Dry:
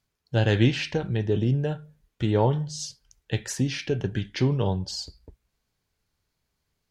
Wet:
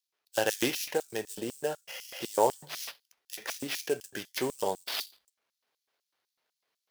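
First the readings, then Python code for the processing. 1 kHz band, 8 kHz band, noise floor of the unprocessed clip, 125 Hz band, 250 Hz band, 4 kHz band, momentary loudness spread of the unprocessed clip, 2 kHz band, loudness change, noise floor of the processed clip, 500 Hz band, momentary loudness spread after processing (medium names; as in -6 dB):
+0.5 dB, +0.5 dB, -79 dBFS, -26.0 dB, -11.5 dB, -2.5 dB, 11 LU, -3.0 dB, -6.5 dB, under -85 dBFS, -3.5 dB, 12 LU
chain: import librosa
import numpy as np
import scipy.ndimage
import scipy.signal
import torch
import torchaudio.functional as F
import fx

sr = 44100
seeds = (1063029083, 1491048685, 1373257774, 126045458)

y = fx.spec_repair(x, sr, seeds[0], start_s=1.91, length_s=0.31, low_hz=510.0, high_hz=3400.0, source='after')
y = fx.sample_hold(y, sr, seeds[1], rate_hz=8300.0, jitter_pct=20)
y = fx.filter_lfo_highpass(y, sr, shape='square', hz=4.0, low_hz=510.0, high_hz=5600.0, q=0.99)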